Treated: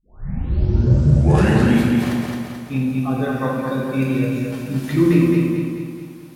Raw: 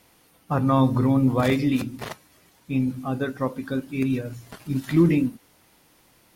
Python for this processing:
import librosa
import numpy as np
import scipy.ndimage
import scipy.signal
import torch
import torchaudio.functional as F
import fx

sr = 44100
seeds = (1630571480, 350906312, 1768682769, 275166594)

p1 = fx.tape_start_head(x, sr, length_s=1.9)
p2 = scipy.signal.sosfilt(scipy.signal.butter(2, 42.0, 'highpass', fs=sr, output='sos'), p1)
p3 = p2 + fx.echo_feedback(p2, sr, ms=217, feedback_pct=50, wet_db=-3.5, dry=0)
y = fx.rev_plate(p3, sr, seeds[0], rt60_s=1.3, hf_ratio=0.75, predelay_ms=0, drr_db=-2.5)